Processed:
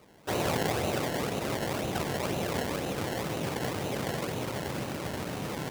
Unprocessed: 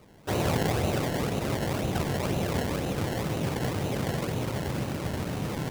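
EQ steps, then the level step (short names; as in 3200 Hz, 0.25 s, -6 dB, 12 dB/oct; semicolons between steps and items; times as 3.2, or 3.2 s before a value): low shelf 180 Hz -10 dB; 0.0 dB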